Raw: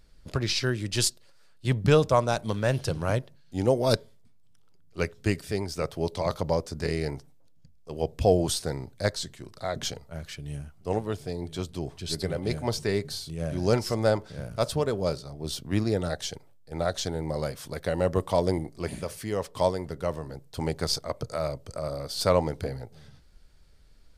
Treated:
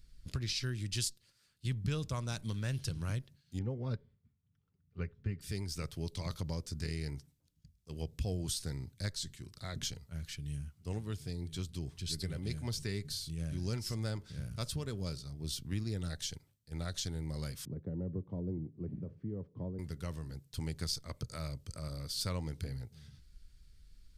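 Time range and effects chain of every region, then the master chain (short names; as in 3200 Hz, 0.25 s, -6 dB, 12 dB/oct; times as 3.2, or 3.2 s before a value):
3.59–5.41 LPF 1600 Hz + notch comb 320 Hz
17.65–19.79 Butterworth band-pass 230 Hz, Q 0.62 + three-band squash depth 40%
whole clip: passive tone stack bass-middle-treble 6-0-2; compressor 2.5:1, threshold -47 dBFS; gain +12 dB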